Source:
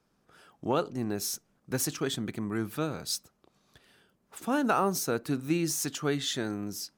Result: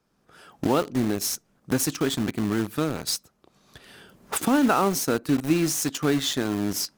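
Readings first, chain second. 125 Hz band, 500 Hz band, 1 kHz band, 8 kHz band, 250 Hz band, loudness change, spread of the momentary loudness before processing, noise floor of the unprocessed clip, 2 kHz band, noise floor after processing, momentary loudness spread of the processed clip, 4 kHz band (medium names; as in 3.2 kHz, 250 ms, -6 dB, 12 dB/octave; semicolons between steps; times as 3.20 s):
+5.5 dB, +5.0 dB, +5.0 dB, +5.5 dB, +8.0 dB, +6.0 dB, 8 LU, -73 dBFS, +5.5 dB, -68 dBFS, 7 LU, +5.5 dB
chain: recorder AGC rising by 17 dB/s; dynamic bell 270 Hz, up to +5 dB, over -45 dBFS, Q 3.3; in parallel at -4 dB: bit crusher 5-bit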